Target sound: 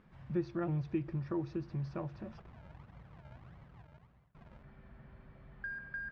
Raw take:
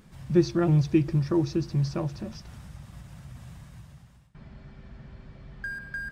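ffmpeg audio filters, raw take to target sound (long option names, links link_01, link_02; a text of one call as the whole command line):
ffmpeg -i in.wav -filter_complex "[0:a]asplit=3[link_01][link_02][link_03];[link_01]afade=type=out:start_time=2.37:duration=0.02[link_04];[link_02]acrusher=samples=40:mix=1:aa=0.000001:lfo=1:lforange=40:lforate=1.6,afade=type=in:start_time=2.37:duration=0.02,afade=type=out:start_time=4.62:duration=0.02[link_05];[link_03]afade=type=in:start_time=4.62:duration=0.02[link_06];[link_04][link_05][link_06]amix=inputs=3:normalize=0,lowpass=2000,lowshelf=frequency=470:gain=-6.5,acompressor=threshold=-34dB:ratio=1.5,volume=-4dB" out.wav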